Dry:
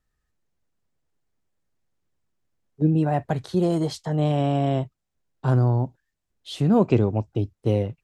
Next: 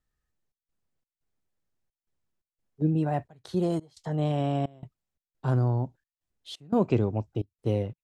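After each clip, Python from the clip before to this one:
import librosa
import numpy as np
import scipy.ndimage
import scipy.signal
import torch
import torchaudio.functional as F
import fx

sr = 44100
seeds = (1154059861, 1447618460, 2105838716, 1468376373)

y = fx.step_gate(x, sr, bpm=87, pattern='xxx.xx.x', floor_db=-24.0, edge_ms=4.5)
y = y * 10.0 ** (-5.0 / 20.0)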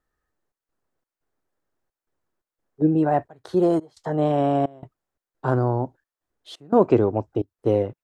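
y = fx.band_shelf(x, sr, hz=700.0, db=9.5, octaves=3.0)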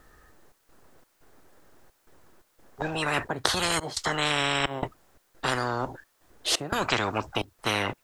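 y = fx.spectral_comp(x, sr, ratio=10.0)
y = y * 10.0 ** (1.5 / 20.0)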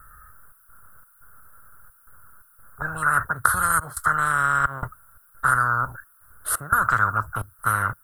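y = fx.curve_eq(x, sr, hz=(110.0, 340.0, 550.0, 820.0, 1400.0, 2400.0, 6400.0, 10000.0), db=(0, -20, -13, -15, 11, -30, -21, 8))
y = y * 10.0 ** (7.0 / 20.0)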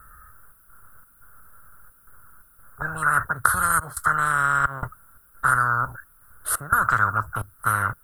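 y = fx.dmg_noise_colour(x, sr, seeds[0], colour='brown', level_db=-63.0)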